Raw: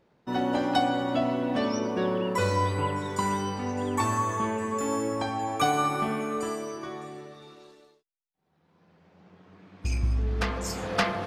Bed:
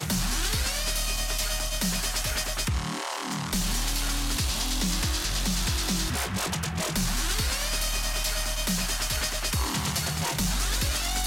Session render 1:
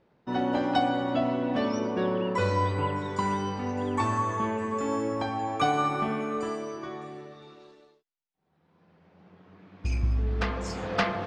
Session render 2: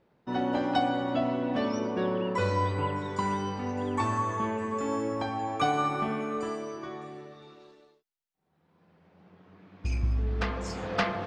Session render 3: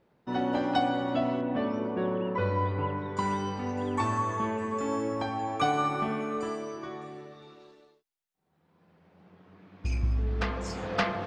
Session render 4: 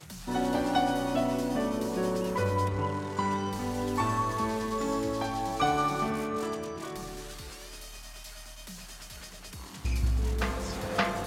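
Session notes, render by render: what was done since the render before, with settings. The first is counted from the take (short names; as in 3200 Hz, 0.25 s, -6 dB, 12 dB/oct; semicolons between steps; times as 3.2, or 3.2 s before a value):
air absorption 100 m
gain -1.5 dB
1.41–3.17 air absorption 330 m
add bed -17 dB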